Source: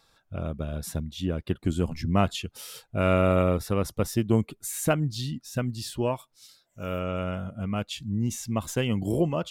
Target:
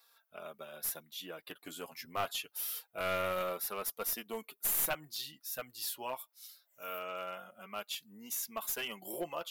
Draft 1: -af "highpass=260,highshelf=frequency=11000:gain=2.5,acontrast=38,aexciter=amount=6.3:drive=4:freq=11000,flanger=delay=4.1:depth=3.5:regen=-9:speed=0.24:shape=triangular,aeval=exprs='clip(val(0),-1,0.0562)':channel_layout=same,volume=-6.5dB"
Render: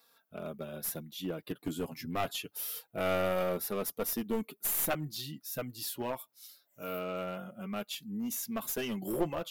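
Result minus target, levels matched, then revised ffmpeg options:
250 Hz band +11.0 dB
-af "highpass=760,highshelf=frequency=11000:gain=2.5,acontrast=38,aexciter=amount=6.3:drive=4:freq=11000,flanger=delay=4.1:depth=3.5:regen=-9:speed=0.24:shape=triangular,aeval=exprs='clip(val(0),-1,0.0562)':channel_layout=same,volume=-6.5dB"

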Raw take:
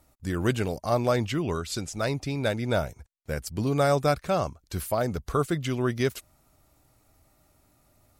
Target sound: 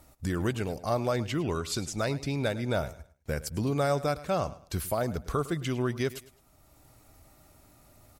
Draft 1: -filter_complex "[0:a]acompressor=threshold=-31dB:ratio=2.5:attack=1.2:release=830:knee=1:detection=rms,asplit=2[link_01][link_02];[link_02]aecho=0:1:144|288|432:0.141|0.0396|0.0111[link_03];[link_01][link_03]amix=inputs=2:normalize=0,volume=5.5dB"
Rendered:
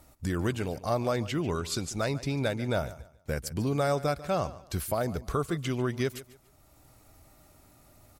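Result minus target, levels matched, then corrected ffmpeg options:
echo 39 ms late
-filter_complex "[0:a]acompressor=threshold=-31dB:ratio=2.5:attack=1.2:release=830:knee=1:detection=rms,asplit=2[link_01][link_02];[link_02]aecho=0:1:105|210|315:0.141|0.0396|0.0111[link_03];[link_01][link_03]amix=inputs=2:normalize=0,volume=5.5dB"

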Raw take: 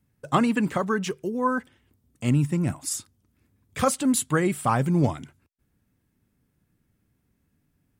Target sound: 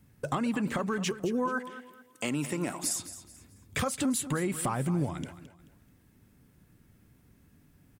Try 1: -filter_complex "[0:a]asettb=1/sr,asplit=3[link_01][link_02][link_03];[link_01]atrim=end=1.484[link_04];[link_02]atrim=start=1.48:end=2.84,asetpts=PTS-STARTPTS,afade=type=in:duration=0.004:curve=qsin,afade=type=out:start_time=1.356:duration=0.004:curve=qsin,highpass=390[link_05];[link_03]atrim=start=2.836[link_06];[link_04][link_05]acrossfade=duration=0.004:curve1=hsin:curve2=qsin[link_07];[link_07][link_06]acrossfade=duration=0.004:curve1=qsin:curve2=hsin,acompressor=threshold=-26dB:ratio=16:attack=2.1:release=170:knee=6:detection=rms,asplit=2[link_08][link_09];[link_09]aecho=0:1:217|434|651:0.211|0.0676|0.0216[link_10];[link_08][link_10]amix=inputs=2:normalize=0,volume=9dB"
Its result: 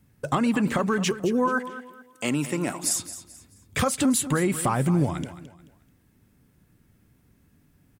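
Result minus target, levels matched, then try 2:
downward compressor: peak gain reduction −7 dB
-filter_complex "[0:a]asettb=1/sr,asplit=3[link_01][link_02][link_03];[link_01]atrim=end=1.484[link_04];[link_02]atrim=start=1.48:end=2.84,asetpts=PTS-STARTPTS,afade=type=in:duration=0.004:curve=qsin,afade=type=out:start_time=1.356:duration=0.004:curve=qsin,highpass=390[link_05];[link_03]atrim=start=2.836[link_06];[link_04][link_05]acrossfade=duration=0.004:curve1=hsin:curve2=qsin[link_07];[link_07][link_06]acrossfade=duration=0.004:curve1=qsin:curve2=hsin,acompressor=threshold=-33.5dB:ratio=16:attack=2.1:release=170:knee=6:detection=rms,asplit=2[link_08][link_09];[link_09]aecho=0:1:217|434|651:0.211|0.0676|0.0216[link_10];[link_08][link_10]amix=inputs=2:normalize=0,volume=9dB"

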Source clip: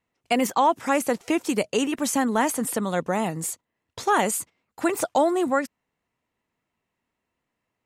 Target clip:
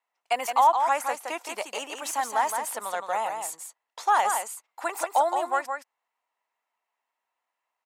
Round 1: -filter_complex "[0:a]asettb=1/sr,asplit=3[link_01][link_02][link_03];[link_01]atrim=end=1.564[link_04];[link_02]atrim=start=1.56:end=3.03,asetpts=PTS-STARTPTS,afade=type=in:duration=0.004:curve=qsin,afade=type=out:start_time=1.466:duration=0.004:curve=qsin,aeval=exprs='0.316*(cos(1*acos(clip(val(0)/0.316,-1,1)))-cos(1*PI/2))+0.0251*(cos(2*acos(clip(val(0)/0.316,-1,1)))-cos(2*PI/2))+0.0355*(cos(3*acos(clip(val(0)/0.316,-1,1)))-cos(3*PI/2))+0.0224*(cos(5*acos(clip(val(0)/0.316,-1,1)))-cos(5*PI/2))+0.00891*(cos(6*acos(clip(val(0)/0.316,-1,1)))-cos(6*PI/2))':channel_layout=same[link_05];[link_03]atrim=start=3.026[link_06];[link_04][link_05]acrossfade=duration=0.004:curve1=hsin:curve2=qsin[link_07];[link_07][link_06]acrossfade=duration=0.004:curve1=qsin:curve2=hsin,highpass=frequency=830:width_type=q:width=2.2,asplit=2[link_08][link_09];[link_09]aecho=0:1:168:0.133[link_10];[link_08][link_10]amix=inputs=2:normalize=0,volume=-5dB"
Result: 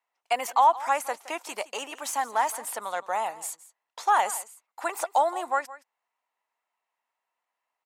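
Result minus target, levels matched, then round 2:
echo-to-direct −11.5 dB
-filter_complex "[0:a]asettb=1/sr,asplit=3[link_01][link_02][link_03];[link_01]atrim=end=1.564[link_04];[link_02]atrim=start=1.56:end=3.03,asetpts=PTS-STARTPTS,afade=type=in:duration=0.004:curve=qsin,afade=type=out:start_time=1.466:duration=0.004:curve=qsin,aeval=exprs='0.316*(cos(1*acos(clip(val(0)/0.316,-1,1)))-cos(1*PI/2))+0.0251*(cos(2*acos(clip(val(0)/0.316,-1,1)))-cos(2*PI/2))+0.0355*(cos(3*acos(clip(val(0)/0.316,-1,1)))-cos(3*PI/2))+0.0224*(cos(5*acos(clip(val(0)/0.316,-1,1)))-cos(5*PI/2))+0.00891*(cos(6*acos(clip(val(0)/0.316,-1,1)))-cos(6*PI/2))':channel_layout=same[link_05];[link_03]atrim=start=3.026[link_06];[link_04][link_05]acrossfade=duration=0.004:curve1=hsin:curve2=qsin[link_07];[link_07][link_06]acrossfade=duration=0.004:curve1=qsin:curve2=hsin,highpass=frequency=830:width_type=q:width=2.2,asplit=2[link_08][link_09];[link_09]aecho=0:1:168:0.501[link_10];[link_08][link_10]amix=inputs=2:normalize=0,volume=-5dB"

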